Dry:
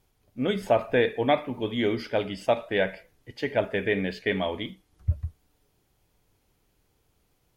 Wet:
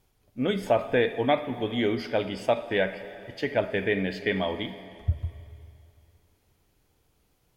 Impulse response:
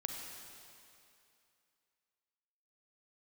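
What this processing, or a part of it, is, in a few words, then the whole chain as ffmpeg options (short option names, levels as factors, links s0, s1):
compressed reverb return: -filter_complex "[0:a]asplit=2[s0][s1];[1:a]atrim=start_sample=2205[s2];[s1][s2]afir=irnorm=-1:irlink=0,acompressor=threshold=0.0562:ratio=6,volume=0.531[s3];[s0][s3]amix=inputs=2:normalize=0,volume=0.75"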